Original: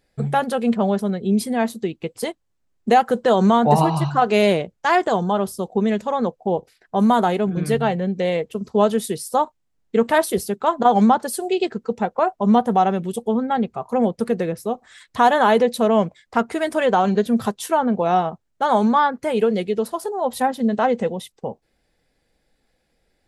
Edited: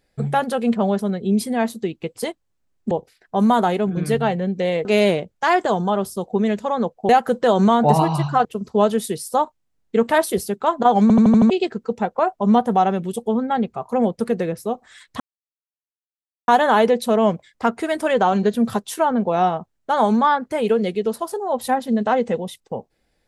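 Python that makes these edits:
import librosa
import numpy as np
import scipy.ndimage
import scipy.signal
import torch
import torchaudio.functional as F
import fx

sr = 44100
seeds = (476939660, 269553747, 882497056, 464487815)

y = fx.edit(x, sr, fx.swap(start_s=2.91, length_s=1.36, other_s=6.51, other_length_s=1.94),
    fx.stutter_over(start_s=11.02, slice_s=0.08, count=6),
    fx.insert_silence(at_s=15.2, length_s=1.28), tone=tone)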